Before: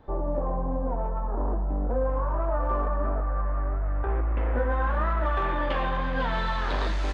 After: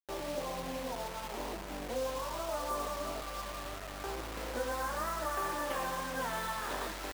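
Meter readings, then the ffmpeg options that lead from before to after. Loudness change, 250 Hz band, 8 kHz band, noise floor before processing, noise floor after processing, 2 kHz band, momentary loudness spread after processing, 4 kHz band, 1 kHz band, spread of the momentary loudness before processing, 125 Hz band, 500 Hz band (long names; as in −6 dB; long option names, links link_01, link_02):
−9.0 dB, −9.5 dB, can't be measured, −28 dBFS, −43 dBFS, −6.0 dB, 6 LU, −1.0 dB, −6.5 dB, 4 LU, −19.0 dB, −7.0 dB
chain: -af "highpass=frequency=290:poles=1,aemphasis=mode=reproduction:type=50kf,acrusher=bits=5:mix=0:aa=0.000001,volume=-6dB"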